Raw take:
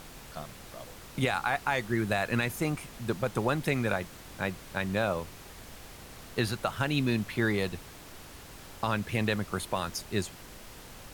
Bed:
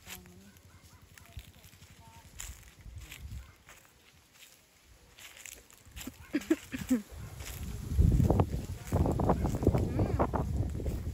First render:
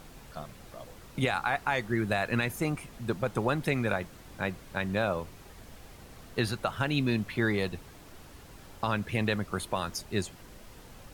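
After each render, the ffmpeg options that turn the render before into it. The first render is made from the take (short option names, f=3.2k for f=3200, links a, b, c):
-af "afftdn=nr=6:nf=-48"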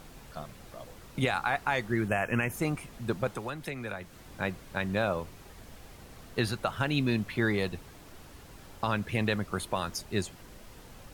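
-filter_complex "[0:a]asettb=1/sr,asplit=3[a][b][c];[a]atrim=end=2.084[d];[b]atrim=start=2.08:end=2.52,asetpts=PTS-STARTPTS,afade=t=in:d=0.004:c=qsin,afade=t=out:st=0.436:d=0.004:c=qsin,asuperstop=centerf=4100:order=20:qfactor=2[e];[c]atrim=start=2.516[f];[d][e]acrossfade=d=0.004:c1=hsin:c2=qsin[g];[g][f]acrossfade=d=0.004:c1=qsin:c2=hsin,asettb=1/sr,asplit=3[h][i][j];[h]atrim=end=3.274[k];[i]atrim=start=3.27:end=4.3,asetpts=PTS-STARTPTS,afade=t=in:d=0.004:c=qsin,afade=t=out:st=1.026:d=0.004:c=qsin,acrossover=split=98|280|1300[l][m][n][o];[l]acompressor=threshold=-52dB:ratio=3[p];[m]acompressor=threshold=-48dB:ratio=3[q];[n]acompressor=threshold=-41dB:ratio=3[r];[o]acompressor=threshold=-41dB:ratio=3[s];[p][q][r][s]amix=inputs=4:normalize=0[t];[j]atrim=start=4.296[u];[k][t]acrossfade=d=0.004:c1=hsin:c2=qsin[v];[v][u]acrossfade=d=0.004:c1=qsin:c2=hsin"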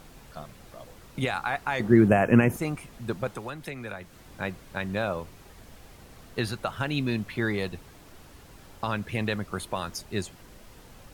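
-filter_complex "[0:a]asettb=1/sr,asplit=3[a][b][c];[a]atrim=end=1.804[d];[b]atrim=start=1.8:end=2.57,asetpts=PTS-STARTPTS,afade=t=in:d=0.004:c=qsin,afade=t=out:st=0.766:d=0.004:c=qsin,equalizer=f=260:w=0.32:g=13[e];[c]atrim=start=2.566[f];[d][e]acrossfade=d=0.004:c1=hsin:c2=qsin[g];[g][f]acrossfade=d=0.004:c1=qsin:c2=hsin"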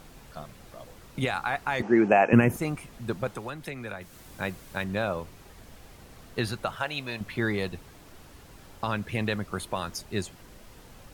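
-filter_complex "[0:a]asettb=1/sr,asplit=3[a][b][c];[a]atrim=end=1.824[d];[b]atrim=start=1.82:end=2.33,asetpts=PTS-STARTPTS,afade=t=in:d=0.004:c=qsin,afade=t=out:st=0.506:d=0.004:c=qsin,highpass=290,equalizer=f=820:t=q:w=4:g=9,equalizer=f=2.5k:t=q:w=4:g=7,equalizer=f=3.7k:t=q:w=4:g=-8,equalizer=f=6.1k:t=q:w=4:g=3,lowpass=f=6.9k:w=0.5412,lowpass=f=6.9k:w=1.3066[e];[c]atrim=start=2.326[f];[d][e]acrossfade=d=0.004:c1=hsin:c2=qsin[g];[g][f]acrossfade=d=0.004:c1=qsin:c2=hsin,asettb=1/sr,asplit=3[h][i][j];[h]atrim=end=4.014[k];[i]atrim=start=4.01:end=4.84,asetpts=PTS-STARTPTS,afade=t=in:d=0.004:c=qsin,afade=t=out:st=0.826:d=0.004:c=qsin,highshelf=f=6.1k:g=8[l];[j]atrim=start=4.836[m];[k][l]acrossfade=d=0.004:c1=hsin:c2=qsin[n];[n][m]acrossfade=d=0.004:c1=qsin:c2=hsin,asettb=1/sr,asplit=3[o][p][q];[o]atrim=end=6.764[r];[p]atrim=start=6.76:end=7.21,asetpts=PTS-STARTPTS,afade=t=in:d=0.004:c=qsin,afade=t=out:st=0.446:d=0.004:c=qsin,lowshelf=f=430:t=q:w=1.5:g=-10.5[s];[q]atrim=start=7.206[t];[r][s]acrossfade=d=0.004:c1=hsin:c2=qsin[u];[u][t]acrossfade=d=0.004:c1=qsin:c2=hsin"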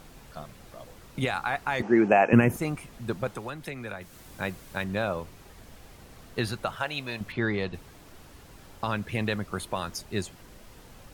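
-filter_complex "[0:a]asettb=1/sr,asplit=3[a][b][c];[a]atrim=end=7.324[d];[b]atrim=start=7.32:end=7.74,asetpts=PTS-STARTPTS,afade=t=in:d=0.004:c=qsin,afade=t=out:st=0.416:d=0.004:c=qsin,lowpass=4.6k[e];[c]atrim=start=7.736[f];[d][e]acrossfade=d=0.004:c1=hsin:c2=qsin[g];[g][f]acrossfade=d=0.004:c1=qsin:c2=hsin"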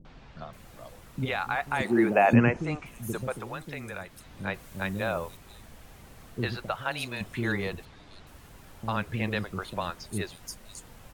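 -filter_complex "[0:a]acrossover=split=380|4900[a][b][c];[b]adelay=50[d];[c]adelay=530[e];[a][d][e]amix=inputs=3:normalize=0"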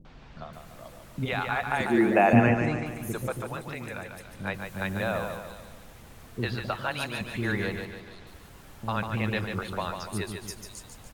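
-af "aecho=1:1:145|290|435|580|725|870:0.501|0.246|0.12|0.059|0.0289|0.0142"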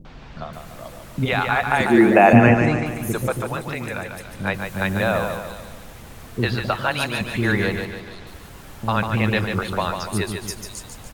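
-af "volume=8.5dB,alimiter=limit=-1dB:level=0:latency=1"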